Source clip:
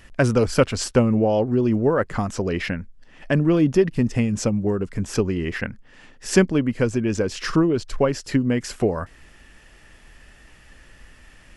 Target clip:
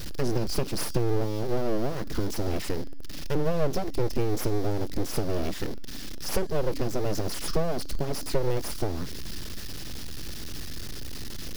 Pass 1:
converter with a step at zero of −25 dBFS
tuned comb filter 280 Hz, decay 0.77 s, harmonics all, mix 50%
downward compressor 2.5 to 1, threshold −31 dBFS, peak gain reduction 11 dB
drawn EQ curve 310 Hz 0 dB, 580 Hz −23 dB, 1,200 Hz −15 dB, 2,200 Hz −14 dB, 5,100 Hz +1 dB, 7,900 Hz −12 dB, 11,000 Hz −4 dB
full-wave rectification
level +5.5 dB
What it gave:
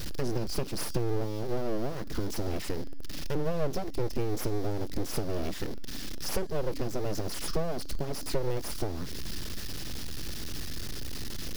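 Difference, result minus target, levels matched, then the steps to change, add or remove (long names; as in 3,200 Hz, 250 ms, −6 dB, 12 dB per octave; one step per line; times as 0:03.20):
downward compressor: peak gain reduction +4 dB
change: downward compressor 2.5 to 1, threshold −24 dBFS, peak gain reduction 6.5 dB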